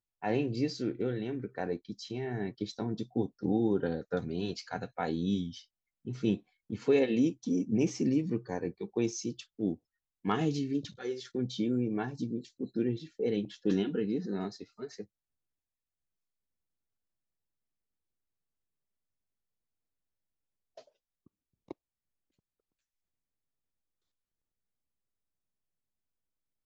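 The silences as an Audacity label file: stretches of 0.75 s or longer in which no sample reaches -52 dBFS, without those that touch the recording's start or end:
15.050000	20.770000	silence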